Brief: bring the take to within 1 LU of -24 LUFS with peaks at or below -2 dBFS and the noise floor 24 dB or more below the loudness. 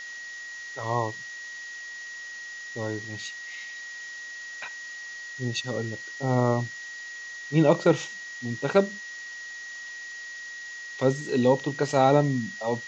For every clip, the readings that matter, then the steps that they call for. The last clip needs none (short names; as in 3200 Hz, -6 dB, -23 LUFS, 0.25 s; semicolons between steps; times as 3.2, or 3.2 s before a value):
steady tone 1900 Hz; tone level -37 dBFS; noise floor -40 dBFS; noise floor target -53 dBFS; loudness -28.5 LUFS; peak -7.5 dBFS; loudness target -24.0 LUFS
-> notch 1900 Hz, Q 30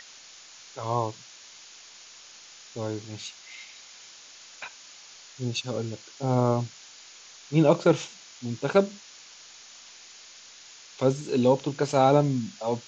steady tone none; noise floor -49 dBFS; noise floor target -51 dBFS
-> noise print and reduce 6 dB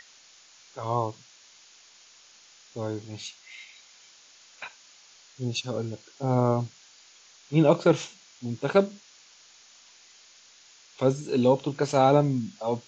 noise floor -55 dBFS; loudness -26.0 LUFS; peak -7.5 dBFS; loudness target -24.0 LUFS
-> gain +2 dB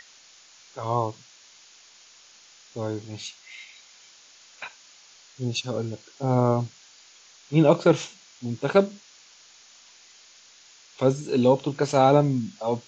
loudness -24.0 LUFS; peak -5.5 dBFS; noise floor -53 dBFS